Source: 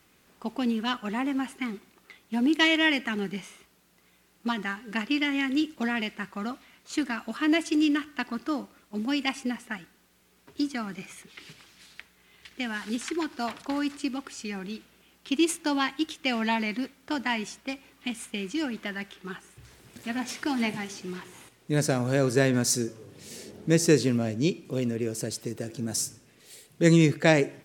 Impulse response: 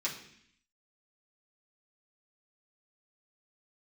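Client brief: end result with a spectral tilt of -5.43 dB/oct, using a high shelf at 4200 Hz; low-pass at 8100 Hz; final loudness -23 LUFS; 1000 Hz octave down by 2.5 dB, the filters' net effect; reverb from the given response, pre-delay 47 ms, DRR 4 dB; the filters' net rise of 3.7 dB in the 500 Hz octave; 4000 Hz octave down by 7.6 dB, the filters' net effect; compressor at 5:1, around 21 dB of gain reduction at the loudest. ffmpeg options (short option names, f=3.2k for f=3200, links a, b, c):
-filter_complex "[0:a]lowpass=8.1k,equalizer=f=500:t=o:g=6,equalizer=f=1k:t=o:g=-5,equalizer=f=4k:t=o:g=-8,highshelf=f=4.2k:g=-5.5,acompressor=threshold=-37dB:ratio=5,asplit=2[a][b];[1:a]atrim=start_sample=2205,adelay=47[c];[b][c]afir=irnorm=-1:irlink=0,volume=-8dB[d];[a][d]amix=inputs=2:normalize=0,volume=17dB"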